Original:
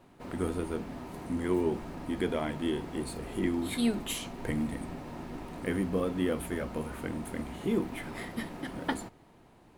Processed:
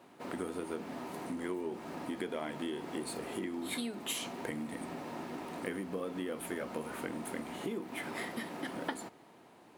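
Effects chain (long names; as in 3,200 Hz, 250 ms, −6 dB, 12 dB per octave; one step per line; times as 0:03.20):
downward compressor 12 to 1, threshold −34 dBFS, peak gain reduction 12 dB
Bessel high-pass filter 270 Hz, order 2
level +2.5 dB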